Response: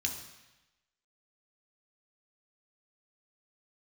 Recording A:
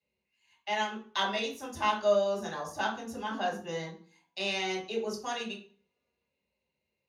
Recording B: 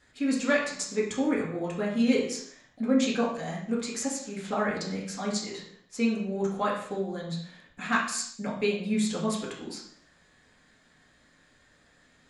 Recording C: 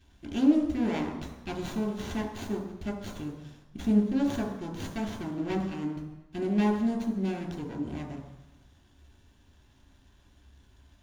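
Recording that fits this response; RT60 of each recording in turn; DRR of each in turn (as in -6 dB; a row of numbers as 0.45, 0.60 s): C; 0.45, 0.65, 1.0 s; -3.5, -4.5, 1.5 dB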